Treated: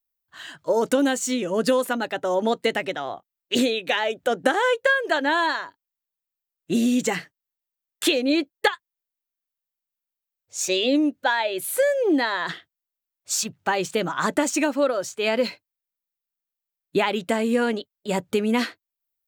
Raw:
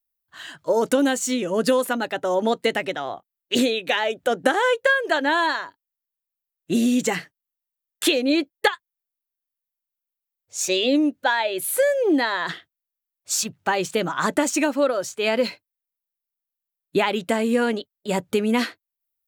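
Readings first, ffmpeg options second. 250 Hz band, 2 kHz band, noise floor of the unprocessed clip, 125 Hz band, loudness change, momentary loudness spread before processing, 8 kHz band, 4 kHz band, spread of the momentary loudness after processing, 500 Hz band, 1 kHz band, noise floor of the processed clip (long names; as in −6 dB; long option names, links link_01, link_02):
−1.0 dB, −1.0 dB, below −85 dBFS, −1.0 dB, −1.0 dB, 9 LU, −1.5 dB, −1.0 dB, 9 LU, −1.0 dB, −1.0 dB, below −85 dBFS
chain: -af "equalizer=frequency=11000:width_type=o:width=0.25:gain=-4,volume=-1dB"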